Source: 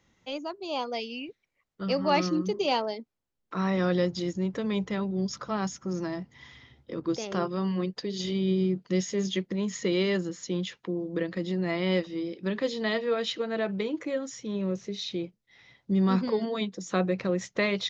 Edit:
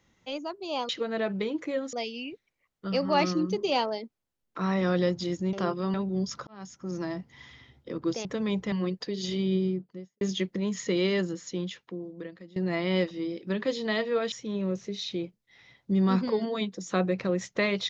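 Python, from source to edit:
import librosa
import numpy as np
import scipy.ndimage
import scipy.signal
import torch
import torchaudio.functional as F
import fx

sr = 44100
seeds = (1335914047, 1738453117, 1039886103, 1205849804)

y = fx.studio_fade_out(x, sr, start_s=8.4, length_s=0.77)
y = fx.edit(y, sr, fx.swap(start_s=4.49, length_s=0.47, other_s=7.27, other_length_s=0.41),
    fx.fade_in_span(start_s=5.49, length_s=0.6),
    fx.fade_out_to(start_s=10.24, length_s=1.28, floor_db=-22.0),
    fx.move(start_s=13.28, length_s=1.04, to_s=0.89), tone=tone)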